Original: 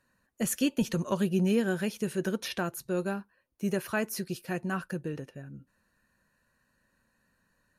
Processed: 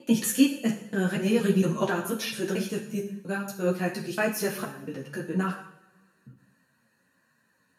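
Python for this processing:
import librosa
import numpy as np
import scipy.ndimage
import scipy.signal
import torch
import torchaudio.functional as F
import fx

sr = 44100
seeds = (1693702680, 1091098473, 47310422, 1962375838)

y = fx.block_reorder(x, sr, ms=232.0, group=4)
y = scipy.signal.sosfilt(scipy.signal.butter(4, 110.0, 'highpass', fs=sr, output='sos'), y)
y = fx.peak_eq(y, sr, hz=150.0, db=4.5, octaves=0.25)
y = fx.rev_double_slope(y, sr, seeds[0], early_s=0.63, late_s=1.8, knee_db=-20, drr_db=2.0)
y = fx.ensemble(y, sr)
y = F.gain(torch.from_numpy(y), 5.5).numpy()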